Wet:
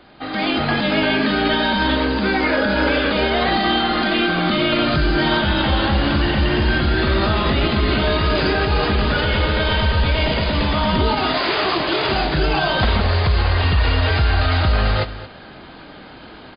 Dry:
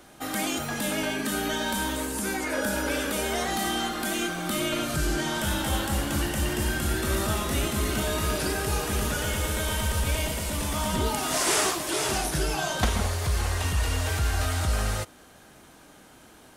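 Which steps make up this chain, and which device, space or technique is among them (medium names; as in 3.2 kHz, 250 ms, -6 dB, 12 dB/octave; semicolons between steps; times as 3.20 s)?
delay 228 ms -17 dB; low-bitrate web radio (level rider gain up to 9 dB; peak limiter -12 dBFS, peak gain reduction 8 dB; trim +4.5 dB; MP3 24 kbps 11.025 kHz)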